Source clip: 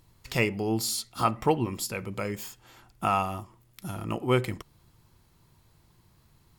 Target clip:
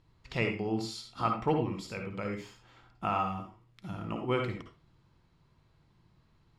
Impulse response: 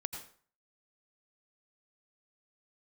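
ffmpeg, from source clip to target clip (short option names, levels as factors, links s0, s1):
-filter_complex "[0:a]lowpass=4000[s0];[1:a]atrim=start_sample=2205,asetrate=70560,aresample=44100[s1];[s0][s1]afir=irnorm=-1:irlink=0"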